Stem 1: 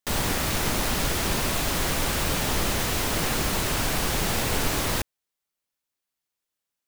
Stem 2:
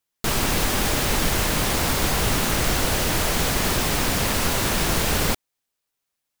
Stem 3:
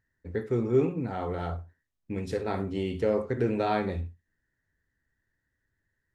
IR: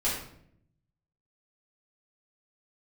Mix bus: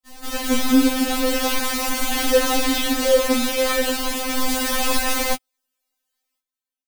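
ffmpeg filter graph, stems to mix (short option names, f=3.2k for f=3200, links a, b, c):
-filter_complex "[0:a]volume=-15dB[a];[1:a]aeval=exprs='clip(val(0),-1,0.112)':c=same,volume=-7.5dB[b];[2:a]bass=f=250:g=9,treble=f=4k:g=0,acrusher=bits=5:mix=0:aa=0.000001,equalizer=f=3.4k:w=1.5:g=7.5,volume=1.5dB[c];[a][b][c]amix=inputs=3:normalize=0,dynaudnorm=f=250:g=3:m=12dB,afftfilt=real='re*3.46*eq(mod(b,12),0)':imag='im*3.46*eq(mod(b,12),0)':win_size=2048:overlap=0.75"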